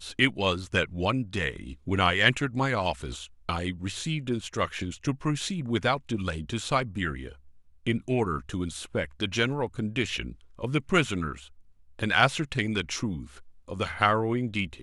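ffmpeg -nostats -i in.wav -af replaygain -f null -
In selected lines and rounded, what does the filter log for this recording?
track_gain = +7.7 dB
track_peak = 0.439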